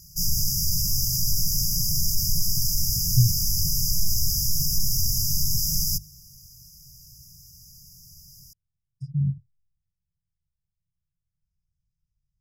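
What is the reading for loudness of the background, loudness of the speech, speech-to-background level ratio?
-23.0 LUFS, -26.0 LUFS, -3.0 dB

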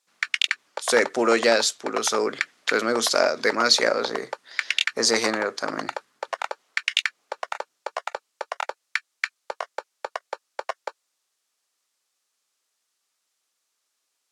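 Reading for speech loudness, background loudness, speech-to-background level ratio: -22.5 LUFS, -30.5 LUFS, 8.0 dB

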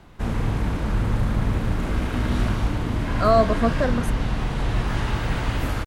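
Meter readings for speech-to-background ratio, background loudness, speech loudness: 3.0 dB, -25.5 LUFS, -22.5 LUFS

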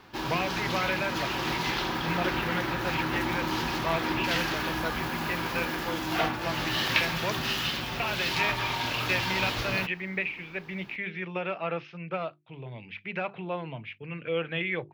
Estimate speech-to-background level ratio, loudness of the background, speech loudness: -4.0 dB, -29.5 LUFS, -33.5 LUFS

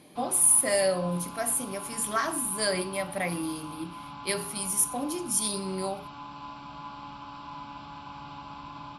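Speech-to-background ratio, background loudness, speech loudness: 16.0 dB, -42.5 LUFS, -26.5 LUFS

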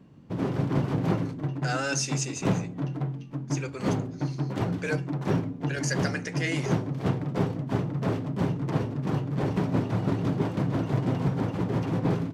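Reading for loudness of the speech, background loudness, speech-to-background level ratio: -33.5 LUFS, -29.0 LUFS, -4.5 dB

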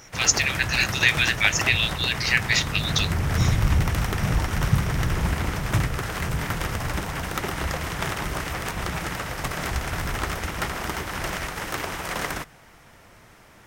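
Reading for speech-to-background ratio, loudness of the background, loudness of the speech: 5.5 dB, -27.0 LUFS, -21.5 LUFS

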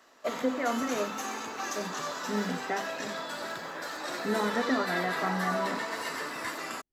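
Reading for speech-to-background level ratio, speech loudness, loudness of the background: 1.0 dB, -33.5 LUFS, -34.5 LUFS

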